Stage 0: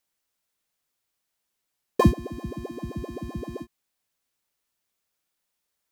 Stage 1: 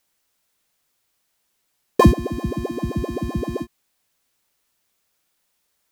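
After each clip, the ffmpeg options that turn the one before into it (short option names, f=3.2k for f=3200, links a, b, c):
-af "alimiter=level_in=10dB:limit=-1dB:release=50:level=0:latency=1,volume=-1dB"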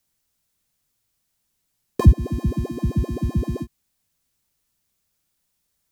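-filter_complex "[0:a]bass=f=250:g=13,treble=f=4k:g=5,acrossover=split=140[a][b];[b]acompressor=threshold=-12dB:ratio=6[c];[a][c]amix=inputs=2:normalize=0,volume=-7dB"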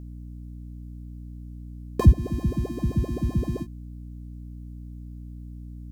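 -af "aeval=exprs='val(0)+0.0178*(sin(2*PI*60*n/s)+sin(2*PI*2*60*n/s)/2+sin(2*PI*3*60*n/s)/3+sin(2*PI*4*60*n/s)/4+sin(2*PI*5*60*n/s)/5)':c=same,volume=-2.5dB"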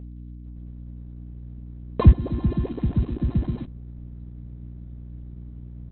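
-af "volume=2dB" -ar 48000 -c:a libopus -b:a 6k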